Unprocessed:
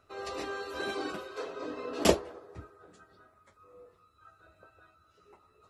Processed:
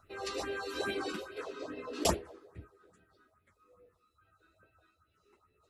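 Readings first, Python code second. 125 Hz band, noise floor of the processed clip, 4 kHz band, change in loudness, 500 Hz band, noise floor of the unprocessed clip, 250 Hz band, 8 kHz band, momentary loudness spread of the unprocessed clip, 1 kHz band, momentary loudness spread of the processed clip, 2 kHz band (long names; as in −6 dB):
−2.5 dB, −75 dBFS, −2.0 dB, −3.0 dB, −4.5 dB, −67 dBFS, −4.5 dB, −0.5 dB, 20 LU, −2.5 dB, 20 LU, −2.0 dB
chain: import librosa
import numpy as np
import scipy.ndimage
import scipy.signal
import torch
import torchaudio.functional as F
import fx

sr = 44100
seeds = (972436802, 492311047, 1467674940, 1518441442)

y = fx.rider(x, sr, range_db=4, speed_s=2.0)
y = fx.phaser_stages(y, sr, stages=4, low_hz=100.0, high_hz=1200.0, hz=2.4, feedback_pct=20)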